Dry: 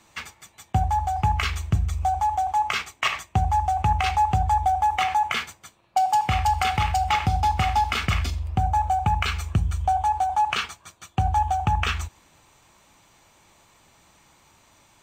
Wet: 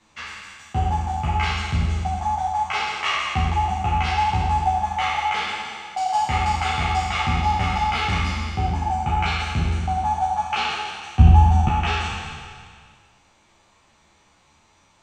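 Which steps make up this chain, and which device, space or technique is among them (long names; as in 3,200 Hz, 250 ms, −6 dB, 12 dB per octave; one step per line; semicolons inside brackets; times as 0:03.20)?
peak hold with a decay on every bin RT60 2.04 s
0:11.19–0:11.68: bass and treble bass +13 dB, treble 0 dB
string-machine ensemble chorus (string-ensemble chorus; low-pass filter 6,500 Hz 12 dB per octave)
level −1 dB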